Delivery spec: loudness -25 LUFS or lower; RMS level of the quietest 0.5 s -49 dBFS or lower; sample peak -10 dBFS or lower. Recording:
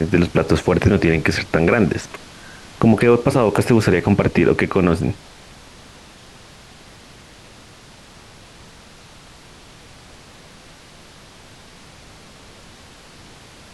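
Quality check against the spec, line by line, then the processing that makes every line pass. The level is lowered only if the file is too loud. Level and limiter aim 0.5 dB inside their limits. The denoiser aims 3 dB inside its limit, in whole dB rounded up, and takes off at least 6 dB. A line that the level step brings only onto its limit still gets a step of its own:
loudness -17.0 LUFS: fail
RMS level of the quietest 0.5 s -44 dBFS: fail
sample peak -3.0 dBFS: fail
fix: trim -8.5 dB

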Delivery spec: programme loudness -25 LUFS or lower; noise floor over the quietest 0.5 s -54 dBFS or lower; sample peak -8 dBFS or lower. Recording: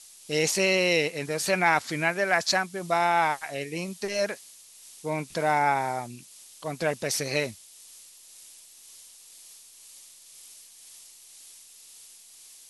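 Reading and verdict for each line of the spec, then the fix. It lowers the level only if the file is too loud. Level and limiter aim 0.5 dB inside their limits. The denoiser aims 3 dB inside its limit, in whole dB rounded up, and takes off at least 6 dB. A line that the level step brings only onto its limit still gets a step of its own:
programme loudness -26.0 LUFS: pass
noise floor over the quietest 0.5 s -51 dBFS: fail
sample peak -9.5 dBFS: pass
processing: noise reduction 6 dB, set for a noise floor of -51 dBFS

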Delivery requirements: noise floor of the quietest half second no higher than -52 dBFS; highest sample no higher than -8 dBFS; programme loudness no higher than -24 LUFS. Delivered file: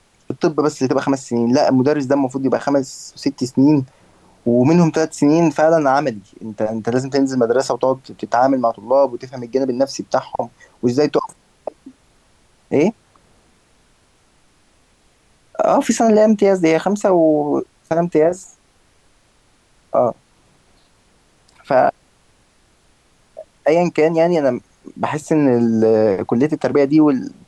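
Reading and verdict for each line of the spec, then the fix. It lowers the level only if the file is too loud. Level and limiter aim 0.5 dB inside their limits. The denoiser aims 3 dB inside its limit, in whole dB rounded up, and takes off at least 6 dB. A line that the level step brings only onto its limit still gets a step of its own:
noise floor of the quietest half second -56 dBFS: pass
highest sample -4.5 dBFS: fail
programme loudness -17.0 LUFS: fail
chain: trim -7.5 dB

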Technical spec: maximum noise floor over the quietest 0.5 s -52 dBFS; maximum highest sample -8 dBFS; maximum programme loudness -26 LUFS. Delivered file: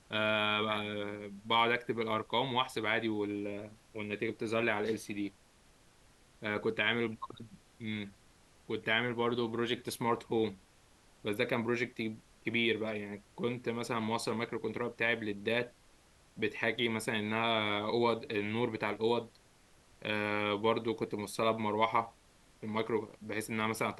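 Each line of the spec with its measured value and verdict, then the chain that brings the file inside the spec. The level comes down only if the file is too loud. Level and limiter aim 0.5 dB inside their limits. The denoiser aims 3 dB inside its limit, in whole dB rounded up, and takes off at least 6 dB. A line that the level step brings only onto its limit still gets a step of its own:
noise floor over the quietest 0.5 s -64 dBFS: pass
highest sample -15.5 dBFS: pass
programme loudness -34.0 LUFS: pass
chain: none needed

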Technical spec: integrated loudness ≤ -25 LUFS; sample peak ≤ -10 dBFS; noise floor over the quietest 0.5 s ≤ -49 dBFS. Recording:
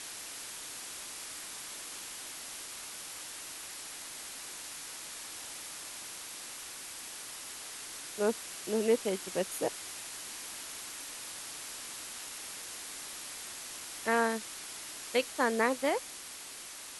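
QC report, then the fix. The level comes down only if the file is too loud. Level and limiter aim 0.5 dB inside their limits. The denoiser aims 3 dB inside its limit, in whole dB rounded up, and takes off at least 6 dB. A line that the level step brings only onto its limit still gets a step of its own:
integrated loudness -36.5 LUFS: pass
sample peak -14.5 dBFS: pass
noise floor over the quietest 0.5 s -46 dBFS: fail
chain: noise reduction 6 dB, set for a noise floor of -46 dBFS

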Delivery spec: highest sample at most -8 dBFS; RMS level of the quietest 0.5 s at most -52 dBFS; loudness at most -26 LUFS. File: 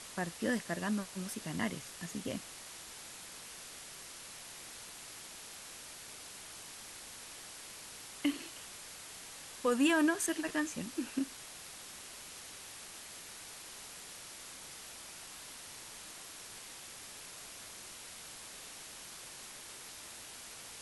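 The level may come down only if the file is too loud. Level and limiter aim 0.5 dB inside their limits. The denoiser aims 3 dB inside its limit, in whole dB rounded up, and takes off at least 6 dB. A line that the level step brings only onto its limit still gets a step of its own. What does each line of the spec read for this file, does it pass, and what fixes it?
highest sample -18.5 dBFS: pass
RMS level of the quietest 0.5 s -50 dBFS: fail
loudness -40.5 LUFS: pass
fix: noise reduction 6 dB, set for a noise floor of -50 dBFS

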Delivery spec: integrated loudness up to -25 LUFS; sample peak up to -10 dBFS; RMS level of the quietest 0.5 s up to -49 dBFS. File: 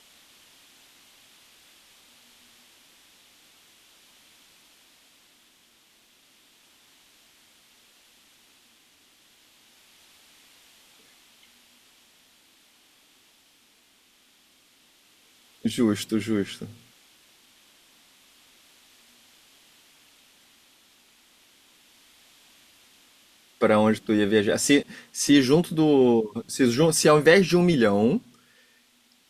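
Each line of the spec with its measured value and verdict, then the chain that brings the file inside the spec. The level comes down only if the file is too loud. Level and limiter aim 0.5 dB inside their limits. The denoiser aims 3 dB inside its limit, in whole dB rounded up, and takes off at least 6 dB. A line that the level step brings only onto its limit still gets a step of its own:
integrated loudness -21.5 LUFS: fail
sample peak -4.5 dBFS: fail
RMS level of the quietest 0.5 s -62 dBFS: pass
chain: trim -4 dB; peak limiter -10.5 dBFS

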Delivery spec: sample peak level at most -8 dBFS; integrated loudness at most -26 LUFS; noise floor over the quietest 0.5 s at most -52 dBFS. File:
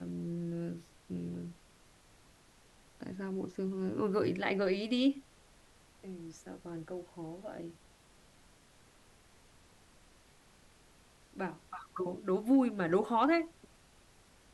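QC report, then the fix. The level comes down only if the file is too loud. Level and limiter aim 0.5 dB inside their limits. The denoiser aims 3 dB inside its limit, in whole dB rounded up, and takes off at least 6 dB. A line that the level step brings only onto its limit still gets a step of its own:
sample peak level -17.0 dBFS: pass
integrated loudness -35.0 LUFS: pass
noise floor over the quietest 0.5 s -63 dBFS: pass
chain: none needed

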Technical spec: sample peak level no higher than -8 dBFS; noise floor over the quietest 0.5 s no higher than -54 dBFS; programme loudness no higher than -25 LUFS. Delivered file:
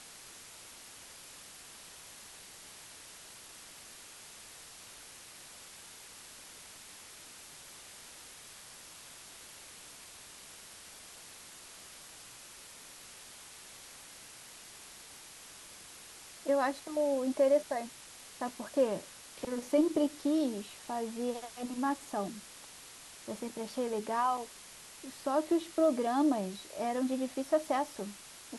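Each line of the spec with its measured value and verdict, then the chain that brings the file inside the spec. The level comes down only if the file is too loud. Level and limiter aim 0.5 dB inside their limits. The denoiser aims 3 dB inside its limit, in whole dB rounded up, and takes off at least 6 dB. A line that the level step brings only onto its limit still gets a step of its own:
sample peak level -17.5 dBFS: pass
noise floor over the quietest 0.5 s -52 dBFS: fail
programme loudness -33.5 LUFS: pass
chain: noise reduction 6 dB, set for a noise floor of -52 dBFS

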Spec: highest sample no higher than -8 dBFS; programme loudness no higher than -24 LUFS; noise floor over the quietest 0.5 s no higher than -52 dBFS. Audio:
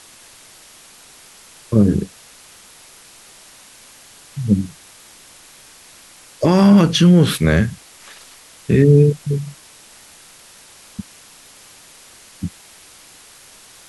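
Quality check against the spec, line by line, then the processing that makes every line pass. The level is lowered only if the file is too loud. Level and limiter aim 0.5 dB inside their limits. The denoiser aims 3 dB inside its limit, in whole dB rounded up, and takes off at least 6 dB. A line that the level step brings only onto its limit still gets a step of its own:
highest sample -3.0 dBFS: fail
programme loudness -15.0 LUFS: fail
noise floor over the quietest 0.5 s -45 dBFS: fail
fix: trim -9.5 dB

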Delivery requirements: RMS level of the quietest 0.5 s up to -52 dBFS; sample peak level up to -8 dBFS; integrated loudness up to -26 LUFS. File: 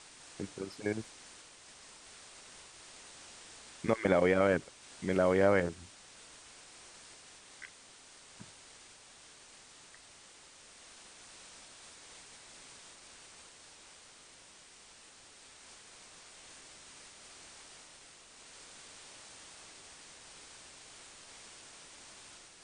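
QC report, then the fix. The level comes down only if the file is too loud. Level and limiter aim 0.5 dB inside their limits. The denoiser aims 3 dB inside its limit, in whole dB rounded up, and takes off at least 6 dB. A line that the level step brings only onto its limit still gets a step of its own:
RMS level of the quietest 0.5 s -57 dBFS: pass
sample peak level -10.5 dBFS: pass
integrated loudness -31.0 LUFS: pass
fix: none needed

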